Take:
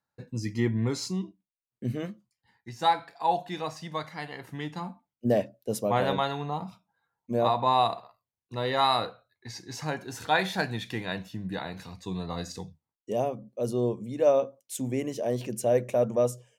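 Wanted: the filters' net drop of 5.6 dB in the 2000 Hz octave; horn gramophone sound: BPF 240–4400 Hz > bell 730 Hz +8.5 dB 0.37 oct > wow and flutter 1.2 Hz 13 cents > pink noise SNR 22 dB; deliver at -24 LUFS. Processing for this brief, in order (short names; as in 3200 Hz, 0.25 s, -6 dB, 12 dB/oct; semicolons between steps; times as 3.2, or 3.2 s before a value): BPF 240–4400 Hz; bell 730 Hz +8.5 dB 0.37 oct; bell 2000 Hz -7.5 dB; wow and flutter 1.2 Hz 13 cents; pink noise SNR 22 dB; gain +3 dB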